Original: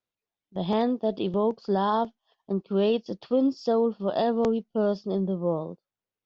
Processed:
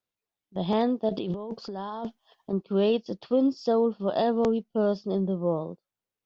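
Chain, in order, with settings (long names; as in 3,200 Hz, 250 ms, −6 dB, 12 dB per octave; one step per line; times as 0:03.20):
0:01.09–0:02.53: compressor whose output falls as the input rises −33 dBFS, ratio −1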